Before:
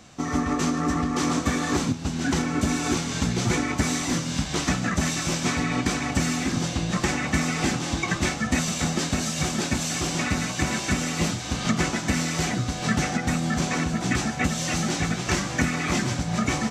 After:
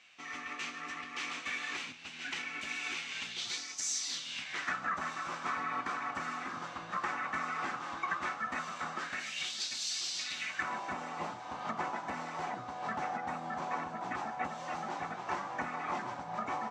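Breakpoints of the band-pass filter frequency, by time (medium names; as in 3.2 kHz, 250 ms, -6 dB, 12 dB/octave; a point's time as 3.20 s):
band-pass filter, Q 2.9
3.19 s 2.5 kHz
3.86 s 6.6 kHz
4.83 s 1.2 kHz
8.96 s 1.2 kHz
9.61 s 4.4 kHz
10.27 s 4.4 kHz
10.75 s 920 Hz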